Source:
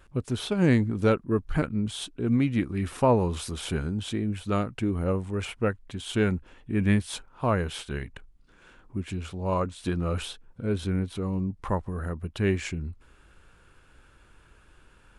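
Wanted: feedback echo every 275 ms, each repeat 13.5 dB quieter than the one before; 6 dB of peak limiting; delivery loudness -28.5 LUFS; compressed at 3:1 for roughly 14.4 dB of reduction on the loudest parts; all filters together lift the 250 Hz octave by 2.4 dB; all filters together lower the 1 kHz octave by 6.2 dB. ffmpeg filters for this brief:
-af "equalizer=f=250:t=o:g=3.5,equalizer=f=1000:t=o:g=-8,acompressor=threshold=0.0158:ratio=3,alimiter=level_in=1.68:limit=0.0631:level=0:latency=1,volume=0.596,aecho=1:1:275|550:0.211|0.0444,volume=3.35"

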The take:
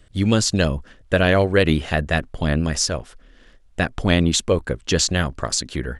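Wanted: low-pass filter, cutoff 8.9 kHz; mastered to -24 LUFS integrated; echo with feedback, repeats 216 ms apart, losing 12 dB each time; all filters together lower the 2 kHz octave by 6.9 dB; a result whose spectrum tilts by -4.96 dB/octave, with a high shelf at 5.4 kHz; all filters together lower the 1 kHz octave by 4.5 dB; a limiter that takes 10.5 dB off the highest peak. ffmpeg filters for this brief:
-af "lowpass=8900,equalizer=f=1000:t=o:g=-5,equalizer=f=2000:t=o:g=-6.5,highshelf=f=5400:g=-6,alimiter=limit=0.211:level=0:latency=1,aecho=1:1:216|432|648:0.251|0.0628|0.0157,volume=1.19"

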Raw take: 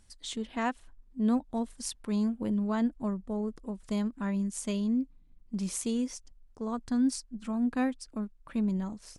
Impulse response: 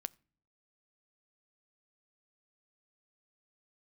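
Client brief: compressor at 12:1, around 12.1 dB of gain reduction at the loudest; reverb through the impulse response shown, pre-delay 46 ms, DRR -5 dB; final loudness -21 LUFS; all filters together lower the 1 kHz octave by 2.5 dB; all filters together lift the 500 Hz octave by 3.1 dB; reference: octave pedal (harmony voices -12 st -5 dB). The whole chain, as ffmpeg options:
-filter_complex "[0:a]equalizer=f=500:t=o:g=5,equalizer=f=1000:t=o:g=-5.5,acompressor=threshold=0.02:ratio=12,asplit=2[s0][s1];[1:a]atrim=start_sample=2205,adelay=46[s2];[s1][s2]afir=irnorm=-1:irlink=0,volume=2.37[s3];[s0][s3]amix=inputs=2:normalize=0,asplit=2[s4][s5];[s5]asetrate=22050,aresample=44100,atempo=2,volume=0.562[s6];[s4][s6]amix=inputs=2:normalize=0,volume=3.76"

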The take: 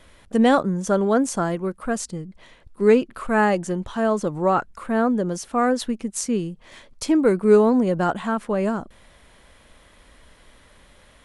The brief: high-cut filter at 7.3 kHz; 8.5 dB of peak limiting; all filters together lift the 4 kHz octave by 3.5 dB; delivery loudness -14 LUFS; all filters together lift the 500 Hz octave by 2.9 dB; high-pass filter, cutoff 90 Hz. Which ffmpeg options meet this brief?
-af "highpass=90,lowpass=7300,equalizer=f=500:t=o:g=3.5,equalizer=f=4000:t=o:g=5,volume=2.51,alimiter=limit=0.668:level=0:latency=1"

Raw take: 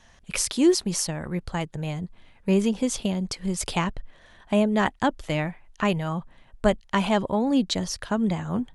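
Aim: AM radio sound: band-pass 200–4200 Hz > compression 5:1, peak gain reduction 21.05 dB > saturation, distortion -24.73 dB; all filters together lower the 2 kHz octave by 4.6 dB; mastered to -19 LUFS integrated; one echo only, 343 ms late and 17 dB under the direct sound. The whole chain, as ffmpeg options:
-af "highpass=200,lowpass=4200,equalizer=f=2000:t=o:g=-5.5,aecho=1:1:343:0.141,acompressor=threshold=0.0112:ratio=5,asoftclip=threshold=0.0447,volume=15.8"

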